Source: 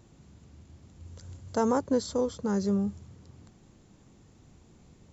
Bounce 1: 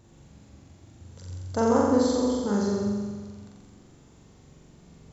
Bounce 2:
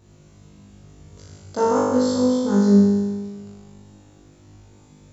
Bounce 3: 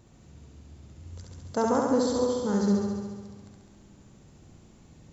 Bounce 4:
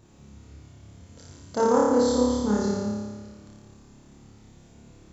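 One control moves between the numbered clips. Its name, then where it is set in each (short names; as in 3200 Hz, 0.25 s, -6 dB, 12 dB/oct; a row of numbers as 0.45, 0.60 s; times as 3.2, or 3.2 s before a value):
flutter echo, walls apart: 7.5, 3.4, 11.8, 4.9 m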